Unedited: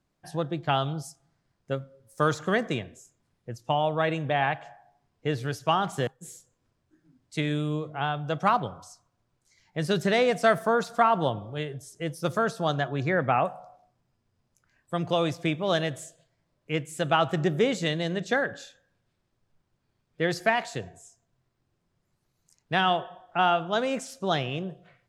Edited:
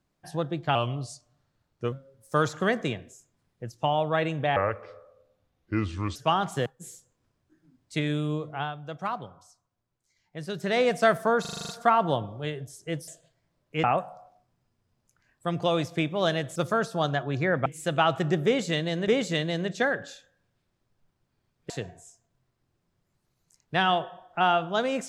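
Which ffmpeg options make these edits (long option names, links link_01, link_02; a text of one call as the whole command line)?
ffmpeg -i in.wav -filter_complex "[0:a]asplit=20[link_01][link_02][link_03][link_04][link_05][link_06][link_07][link_08][link_09][link_10][link_11][link_12][link_13][link_14][link_15][link_16][link_17][link_18][link_19][link_20];[link_01]atrim=end=0.754[link_21];[link_02]atrim=start=0.75:end=1.78,asetpts=PTS-STARTPTS,asetrate=38808,aresample=44100,atrim=end_sample=51617,asetpts=PTS-STARTPTS[link_22];[link_03]atrim=start=1.776:end=4.424[link_23];[link_04]atrim=start=4.42:end=5.57,asetpts=PTS-STARTPTS,asetrate=31752,aresample=44100[link_24];[link_05]atrim=start=5.566:end=8.17,asetpts=PTS-STARTPTS,afade=type=out:start_time=2.364:duration=0.24:silence=0.375837[link_25];[link_06]atrim=start=8.17:end=10,asetpts=PTS-STARTPTS,volume=-8.5dB[link_26];[link_07]atrim=start=10:end=10.862,asetpts=PTS-STARTPTS,afade=type=in:duration=0.24:silence=0.375837[link_27];[link_08]atrim=start=10.818:end=10.862[link_28];[link_09]atrim=start=10.818:end=10.862[link_29];[link_10]atrim=start=10.818:end=10.862[link_30];[link_11]atrim=start=10.818:end=10.862[link_31];[link_12]atrim=start=10.818:end=10.862[link_32];[link_13]atrim=start=10.818:end=10.862[link_33];[link_14]atrim=start=10.818:end=12.212[link_34];[link_15]atrim=start=16.028:end=16.792[link_35];[link_16]atrim=start=13.308:end=16.032[link_36];[link_17]atrim=start=12.208:end=13.312[link_37];[link_18]atrim=start=16.788:end=18.212[link_38];[link_19]atrim=start=17.588:end=20.212[link_39];[link_20]atrim=start=20.678[link_40];[link_21][link_22]acrossfade=duration=0.004:curve1=hsin:curve2=hsin[link_41];[link_41][link_23]acrossfade=duration=0.004:curve1=hsin:curve2=hsin[link_42];[link_42][link_24]acrossfade=duration=0.004:curve1=hsin:curve2=hsin[link_43];[link_25][link_26][link_27]concat=n=3:v=0:a=1[link_44];[link_43][link_44]acrossfade=duration=0.004:curve1=hsin:curve2=hsin[link_45];[link_45][link_28]acrossfade=duration=0.004:curve1=hsin:curve2=hsin[link_46];[link_46][link_29]acrossfade=duration=0.004:curve1=hsin:curve2=hsin[link_47];[link_47][link_30]acrossfade=duration=0.004:curve1=hsin:curve2=hsin[link_48];[link_48][link_31]acrossfade=duration=0.004:curve1=hsin:curve2=hsin[link_49];[link_49][link_32]acrossfade=duration=0.004:curve1=hsin:curve2=hsin[link_50];[link_50][link_33]acrossfade=duration=0.004:curve1=hsin:curve2=hsin[link_51];[link_51][link_34]acrossfade=duration=0.004:curve1=hsin:curve2=hsin[link_52];[link_52][link_35]acrossfade=duration=0.004:curve1=hsin:curve2=hsin[link_53];[link_53][link_36]acrossfade=duration=0.004:curve1=hsin:curve2=hsin[link_54];[link_54][link_37]acrossfade=duration=0.004:curve1=hsin:curve2=hsin[link_55];[link_55][link_38]acrossfade=duration=0.004:curve1=hsin:curve2=hsin[link_56];[link_56][link_39]acrossfade=duration=0.004:curve1=hsin:curve2=hsin[link_57];[link_57][link_40]acrossfade=duration=0.004:curve1=hsin:curve2=hsin" out.wav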